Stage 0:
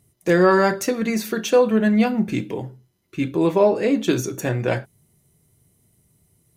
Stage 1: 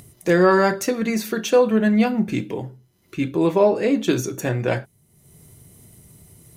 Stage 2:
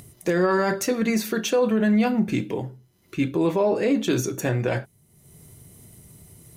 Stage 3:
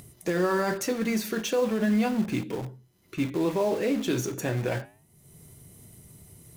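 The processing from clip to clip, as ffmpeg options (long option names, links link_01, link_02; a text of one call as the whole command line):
ffmpeg -i in.wav -af "acompressor=mode=upward:threshold=-35dB:ratio=2.5" out.wav
ffmpeg -i in.wav -af "alimiter=limit=-13dB:level=0:latency=1:release=25" out.wav
ffmpeg -i in.wav -filter_complex "[0:a]flanger=delay=4.7:depth=9.3:regen=-88:speed=0.36:shape=triangular,asplit=2[link_01][link_02];[link_02]aeval=exprs='(mod(37.6*val(0)+1,2)-1)/37.6':channel_layout=same,volume=-10.5dB[link_03];[link_01][link_03]amix=inputs=2:normalize=0" out.wav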